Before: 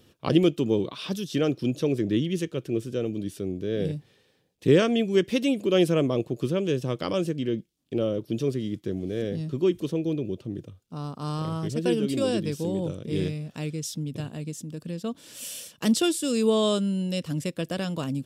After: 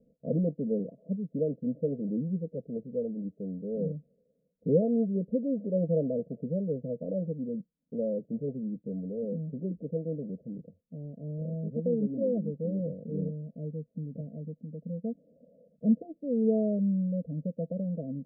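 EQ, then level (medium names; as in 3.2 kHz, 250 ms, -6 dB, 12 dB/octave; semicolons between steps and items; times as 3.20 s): rippled Chebyshev low-pass 690 Hz, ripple 6 dB; static phaser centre 530 Hz, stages 8; 0.0 dB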